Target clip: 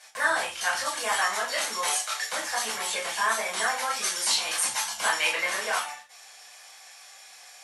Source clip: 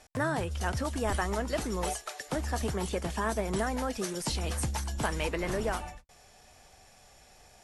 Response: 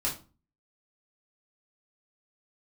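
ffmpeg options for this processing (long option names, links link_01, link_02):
-filter_complex "[0:a]highpass=1300[link_01];[1:a]atrim=start_sample=2205,afade=type=out:start_time=0.16:duration=0.01,atrim=end_sample=7497,asetrate=36162,aresample=44100[link_02];[link_01][link_02]afir=irnorm=-1:irlink=0,volume=5dB"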